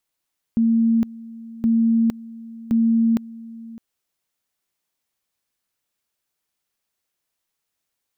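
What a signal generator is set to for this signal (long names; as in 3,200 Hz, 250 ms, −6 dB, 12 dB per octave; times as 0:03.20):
tone at two levels in turn 228 Hz −14 dBFS, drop 20 dB, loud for 0.46 s, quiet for 0.61 s, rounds 3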